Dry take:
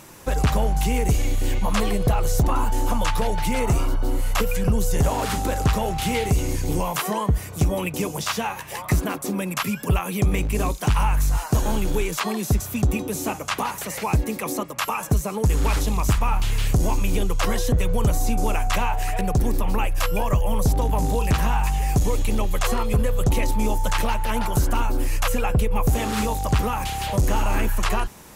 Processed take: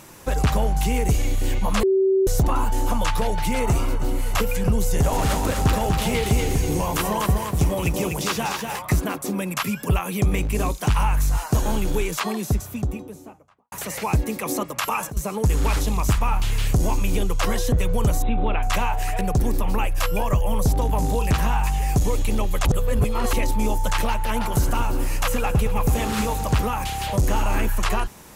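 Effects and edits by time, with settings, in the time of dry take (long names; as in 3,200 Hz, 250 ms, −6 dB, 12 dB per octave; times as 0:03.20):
0:01.83–0:02.27: beep over 384 Hz −15 dBFS
0:03.33–0:03.74: delay throw 320 ms, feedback 70%, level −12.5 dB
0:04.88–0:08.79: feedback echo at a low word length 245 ms, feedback 35%, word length 8 bits, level −4 dB
0:12.14–0:13.72: fade out and dull
0:14.49–0:15.17: compressor whose output falls as the input rises −25 dBFS
0:18.22–0:18.63: linear-phase brick-wall low-pass 4,000 Hz
0:22.65–0:23.33: reverse
0:24.29–0:26.60: feedback echo at a low word length 110 ms, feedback 80%, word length 8 bits, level −14.5 dB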